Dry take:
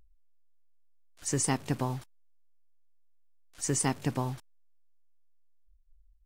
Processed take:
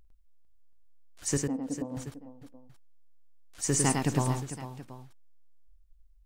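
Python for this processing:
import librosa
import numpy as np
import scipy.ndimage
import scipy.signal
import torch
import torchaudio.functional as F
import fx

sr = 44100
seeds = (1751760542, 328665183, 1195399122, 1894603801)

y = fx.double_bandpass(x, sr, hz=370.0, octaves=0.83, at=(1.37, 1.97))
y = fx.echo_multitap(y, sr, ms=(49, 103, 449, 728), db=(-16.5, -3.5, -12.0, -16.5))
y = F.gain(torch.from_numpy(y), 1.5).numpy()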